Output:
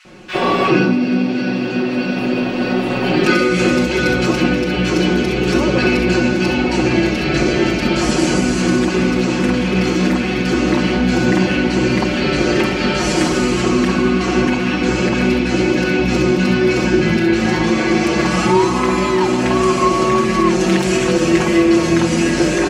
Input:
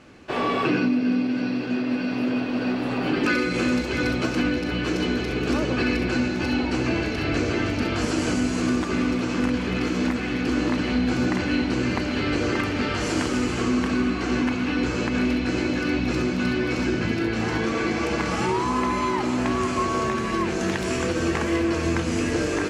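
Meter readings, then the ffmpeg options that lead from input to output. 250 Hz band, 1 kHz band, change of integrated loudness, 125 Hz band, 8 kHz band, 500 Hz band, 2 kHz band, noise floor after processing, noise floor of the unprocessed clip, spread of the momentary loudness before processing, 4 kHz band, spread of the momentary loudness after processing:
+8.0 dB, +8.0 dB, +8.5 dB, +9.0 dB, +9.5 dB, +10.5 dB, +8.0 dB, −19 dBFS, −27 dBFS, 2 LU, +9.0 dB, 3 LU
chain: -filter_complex "[0:a]aecho=1:1:5.5:0.95,acrossover=split=1400[link_01][link_02];[link_01]adelay=50[link_03];[link_03][link_02]amix=inputs=2:normalize=0,volume=7dB"

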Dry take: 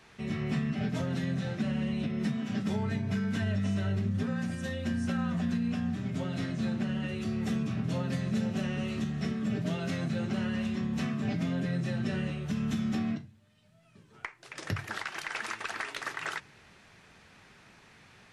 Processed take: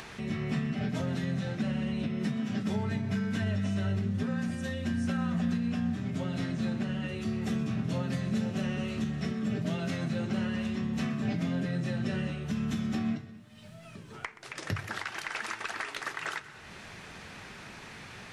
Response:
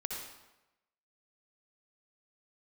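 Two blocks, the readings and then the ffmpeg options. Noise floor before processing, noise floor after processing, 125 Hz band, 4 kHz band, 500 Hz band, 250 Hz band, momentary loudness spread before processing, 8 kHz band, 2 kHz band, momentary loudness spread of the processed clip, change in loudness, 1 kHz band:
−58 dBFS, −48 dBFS, 0.0 dB, +0.5 dB, 0.0 dB, 0.0 dB, 5 LU, +0.5 dB, +0.5 dB, 14 LU, 0.0 dB, +0.5 dB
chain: -filter_complex "[0:a]acompressor=mode=upward:threshold=-35dB:ratio=2.5,asplit=2[link_01][link_02];[1:a]atrim=start_sample=2205,adelay=125[link_03];[link_02][link_03]afir=irnorm=-1:irlink=0,volume=-15.5dB[link_04];[link_01][link_04]amix=inputs=2:normalize=0"

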